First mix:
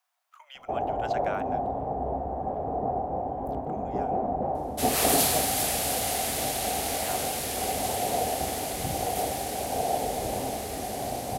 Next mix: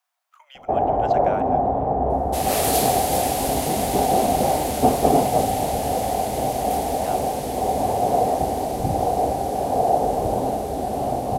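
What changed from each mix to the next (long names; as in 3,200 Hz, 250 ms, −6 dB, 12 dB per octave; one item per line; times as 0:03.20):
first sound +9.0 dB
second sound: entry −2.45 s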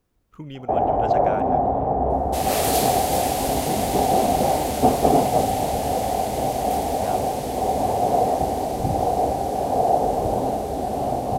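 speech: remove Butterworth high-pass 650 Hz 72 dB per octave
second sound: add parametric band 11,000 Hz −3.5 dB 0.54 octaves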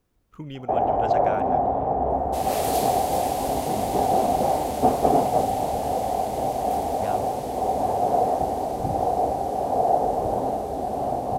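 first sound: add low-shelf EQ 410 Hz −5.5 dB
second sound −7.0 dB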